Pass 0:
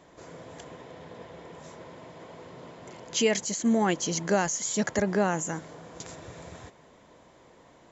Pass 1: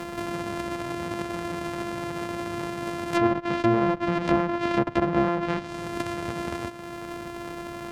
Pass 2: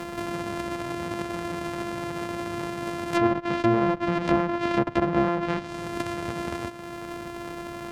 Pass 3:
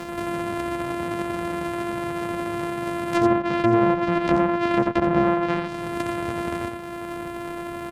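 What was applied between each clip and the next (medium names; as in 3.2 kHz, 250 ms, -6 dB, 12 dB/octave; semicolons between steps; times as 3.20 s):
sorted samples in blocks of 128 samples; low-pass that closes with the level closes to 1.4 kHz, closed at -23.5 dBFS; three bands compressed up and down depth 70%; trim +5.5 dB
no audible change
delay 87 ms -6 dB; trim +1 dB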